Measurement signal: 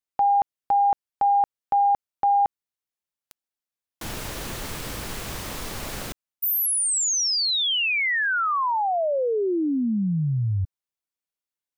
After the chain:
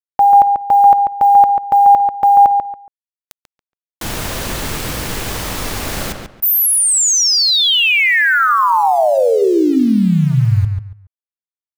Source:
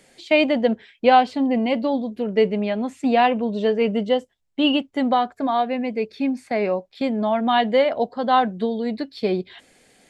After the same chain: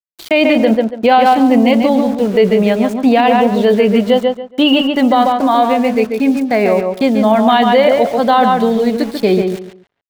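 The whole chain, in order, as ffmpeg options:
ffmpeg -i in.wav -filter_complex "[0:a]bandreject=frequency=140.4:width_type=h:width=4,bandreject=frequency=280.8:width_type=h:width=4,bandreject=frequency=421.2:width_type=h:width=4,bandreject=frequency=561.6:width_type=h:width=4,bandreject=frequency=702:width_type=h:width=4,bandreject=frequency=842.4:width_type=h:width=4,bandreject=frequency=982.8:width_type=h:width=4,bandreject=frequency=1123.2:width_type=h:width=4,bandreject=frequency=1263.6:width_type=h:width=4,bandreject=frequency=1404:width_type=h:width=4,aeval=exprs='val(0)*gte(abs(val(0)),0.0133)':channel_layout=same,asplit=2[link_01][link_02];[link_02]adelay=140,lowpass=frequency=2900:poles=1,volume=-5dB,asplit=2[link_03][link_04];[link_04]adelay=140,lowpass=frequency=2900:poles=1,volume=0.25,asplit=2[link_05][link_06];[link_06]adelay=140,lowpass=frequency=2900:poles=1,volume=0.25[link_07];[link_01][link_03][link_05][link_07]amix=inputs=4:normalize=0,alimiter=level_in=11dB:limit=-1dB:release=50:level=0:latency=1,volume=-1dB" out.wav

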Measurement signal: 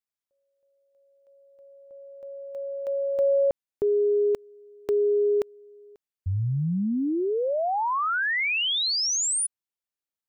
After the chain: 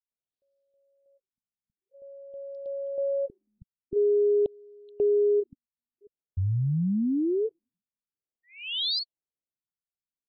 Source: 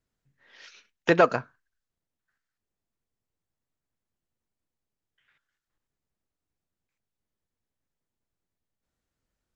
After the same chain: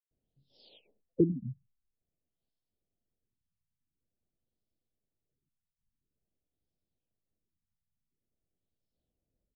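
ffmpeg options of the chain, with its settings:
ffmpeg -i in.wav -filter_complex "[0:a]asuperstop=centerf=1500:order=8:qfactor=0.62,acrossover=split=4200[link_01][link_02];[link_01]adelay=110[link_03];[link_03][link_02]amix=inputs=2:normalize=0,afftfilt=real='re*lt(b*sr/1024,210*pow(5700/210,0.5+0.5*sin(2*PI*0.48*pts/sr)))':imag='im*lt(b*sr/1024,210*pow(5700/210,0.5+0.5*sin(2*PI*0.48*pts/sr)))':win_size=1024:overlap=0.75" out.wav

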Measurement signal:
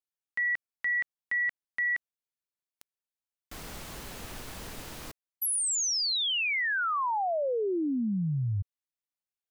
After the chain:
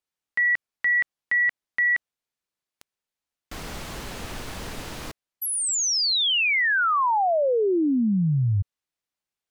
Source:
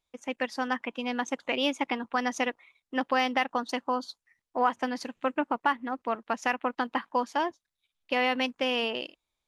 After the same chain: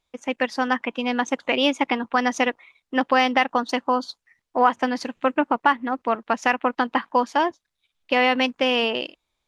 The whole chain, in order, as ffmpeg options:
ffmpeg -i in.wav -af "highshelf=frequency=10000:gain=-10.5,volume=7.5dB" out.wav

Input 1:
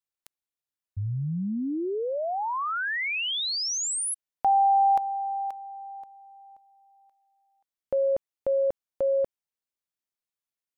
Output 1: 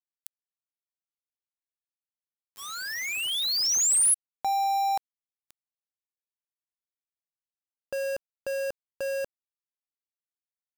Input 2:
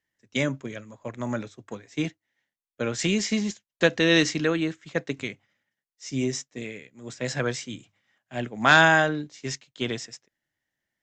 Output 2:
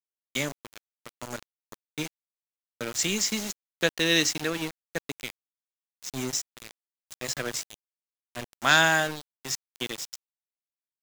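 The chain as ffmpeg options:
ffmpeg -i in.wav -af "crystalizer=i=3.5:c=0,aeval=exprs='val(0)*gte(abs(val(0)),0.0596)':channel_layout=same,volume=-6dB" out.wav

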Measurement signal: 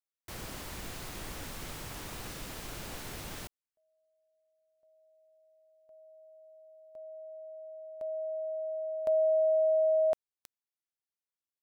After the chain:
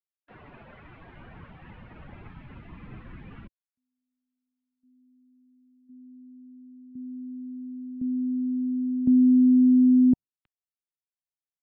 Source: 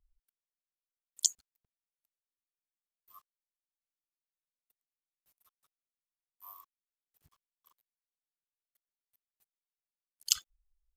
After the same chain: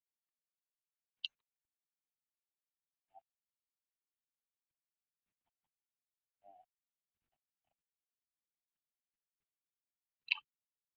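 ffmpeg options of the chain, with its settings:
ffmpeg -i in.wav -af "highpass=frequency=530:width_type=q:width=0.5412,highpass=frequency=530:width_type=q:width=1.307,lowpass=frequency=3500:width_type=q:width=0.5176,lowpass=frequency=3500:width_type=q:width=0.7071,lowpass=frequency=3500:width_type=q:width=1.932,afreqshift=-380,asubboost=boost=6.5:cutoff=190,afftdn=noise_reduction=16:noise_floor=-44,volume=3.5dB" out.wav

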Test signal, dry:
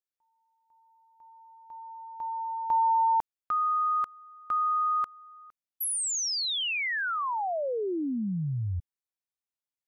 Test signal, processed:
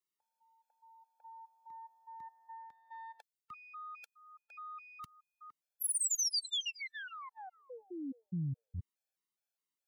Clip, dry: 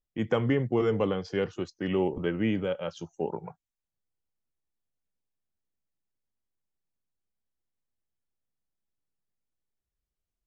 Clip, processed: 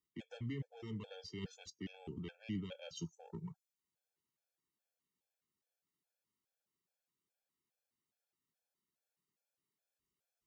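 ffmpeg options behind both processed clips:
ffmpeg -i in.wav -filter_complex "[0:a]aeval=exprs='(tanh(7.08*val(0)+0.75)-tanh(0.75))/7.08':channel_layout=same,areverse,acompressor=threshold=-38dB:ratio=16:attack=67:release=230:knee=1:detection=rms,areverse,highpass=150,acrossover=split=210|3000[link_01][link_02][link_03];[link_02]acompressor=threshold=-56dB:ratio=6:attack=0.12:release=551:knee=2.83:detection=peak[link_04];[link_01][link_04][link_03]amix=inputs=3:normalize=0,afftfilt=real='re*gt(sin(2*PI*2.4*pts/sr)*(1-2*mod(floor(b*sr/1024/450),2)),0)':imag='im*gt(sin(2*PI*2.4*pts/sr)*(1-2*mod(floor(b*sr/1024/450),2)),0)':win_size=1024:overlap=0.75,volume=8.5dB" out.wav

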